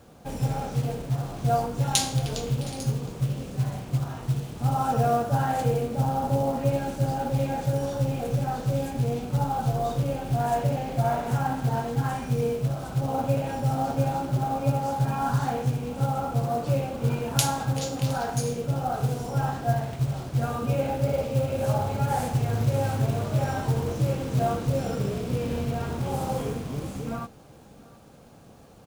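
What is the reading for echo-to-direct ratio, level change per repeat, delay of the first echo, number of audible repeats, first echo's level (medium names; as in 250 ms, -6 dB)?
-21.5 dB, no regular repeats, 714 ms, 1, -21.5 dB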